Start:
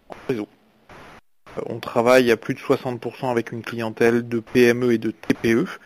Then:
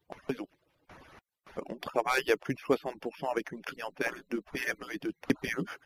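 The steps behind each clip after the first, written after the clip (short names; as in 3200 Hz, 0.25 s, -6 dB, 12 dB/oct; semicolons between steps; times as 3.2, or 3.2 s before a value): median-filter separation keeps percussive; gain -8 dB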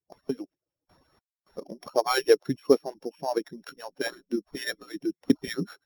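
sample sorter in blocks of 8 samples; spectral expander 1.5:1; gain +6.5 dB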